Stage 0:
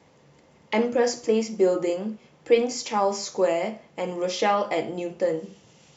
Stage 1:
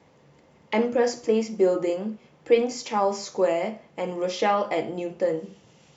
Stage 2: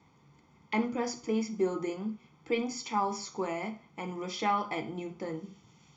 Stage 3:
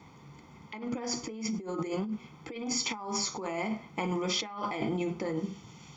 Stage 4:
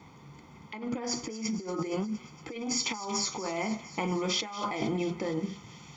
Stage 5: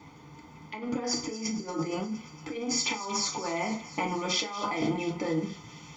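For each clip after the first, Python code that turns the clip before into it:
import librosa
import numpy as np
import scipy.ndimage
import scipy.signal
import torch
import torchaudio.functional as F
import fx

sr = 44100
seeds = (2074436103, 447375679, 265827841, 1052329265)

y1 = fx.high_shelf(x, sr, hz=4500.0, db=-6.0)
y2 = y1 + 0.75 * np.pad(y1, (int(0.9 * sr / 1000.0), 0))[:len(y1)]
y2 = F.gain(torch.from_numpy(y2), -7.0).numpy()
y3 = fx.over_compress(y2, sr, threshold_db=-39.0, ratio=-1.0)
y3 = F.gain(torch.from_numpy(y3), 4.5).numpy()
y4 = fx.echo_wet_highpass(y3, sr, ms=232, feedback_pct=72, hz=1400.0, wet_db=-14.5)
y4 = F.gain(torch.from_numpy(y4), 1.0).numpy()
y5 = fx.rev_fdn(y4, sr, rt60_s=0.32, lf_ratio=0.8, hf_ratio=0.85, size_ms=20.0, drr_db=2.0)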